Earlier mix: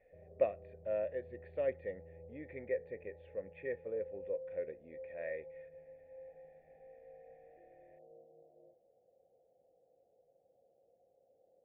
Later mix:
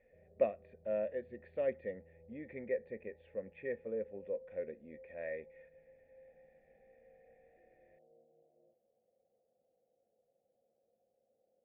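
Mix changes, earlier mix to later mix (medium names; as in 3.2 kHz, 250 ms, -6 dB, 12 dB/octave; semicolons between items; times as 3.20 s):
background -8.0 dB; master: add peaking EQ 220 Hz +11 dB 0.32 oct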